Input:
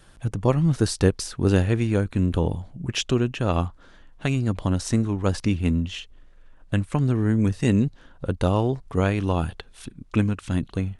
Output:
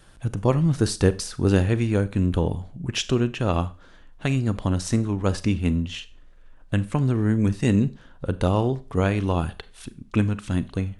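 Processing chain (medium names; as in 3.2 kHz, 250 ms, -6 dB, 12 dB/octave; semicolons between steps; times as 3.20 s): Schroeder reverb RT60 0.35 s, combs from 30 ms, DRR 15 dB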